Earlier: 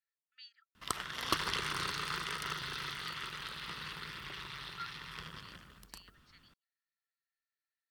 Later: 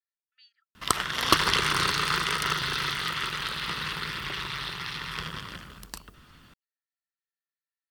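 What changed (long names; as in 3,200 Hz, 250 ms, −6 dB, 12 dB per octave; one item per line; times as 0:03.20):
speech −4.0 dB
background +11.5 dB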